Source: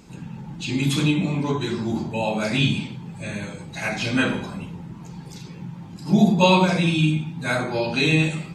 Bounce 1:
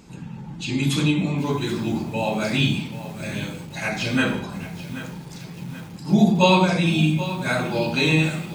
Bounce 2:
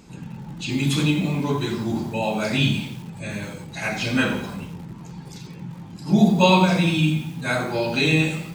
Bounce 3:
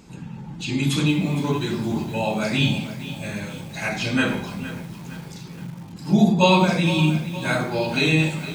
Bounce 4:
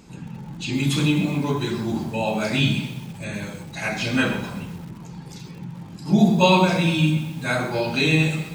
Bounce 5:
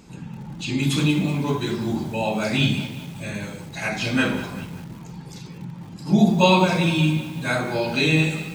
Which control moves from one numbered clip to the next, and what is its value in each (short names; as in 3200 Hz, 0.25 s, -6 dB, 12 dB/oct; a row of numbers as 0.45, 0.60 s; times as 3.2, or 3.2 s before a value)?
lo-fi delay, time: 780, 86, 463, 128, 191 ms